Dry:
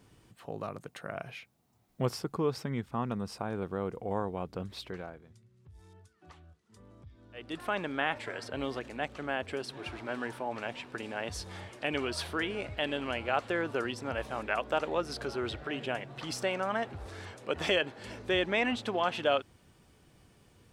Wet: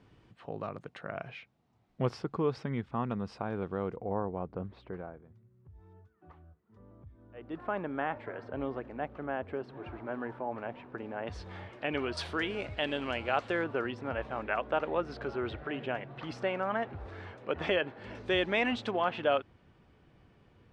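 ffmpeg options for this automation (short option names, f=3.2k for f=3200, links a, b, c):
-af "asetnsamples=n=441:p=0,asendcmd='3.96 lowpass f 1300;11.27 lowpass f 2600;12.17 lowpass f 5900;13.64 lowpass f 2400;18.15 lowpass f 5100;18.91 lowpass f 2600',lowpass=3.4k"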